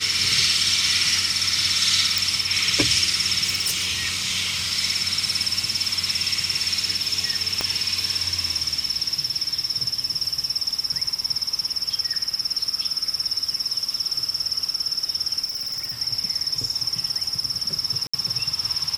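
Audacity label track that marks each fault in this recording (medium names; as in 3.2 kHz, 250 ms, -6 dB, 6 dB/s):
2.180000	2.180000	pop
3.450000	3.880000	clipped -18 dBFS
7.610000	7.610000	pop -8 dBFS
15.440000	15.940000	clipped -24.5 dBFS
18.070000	18.140000	dropout 65 ms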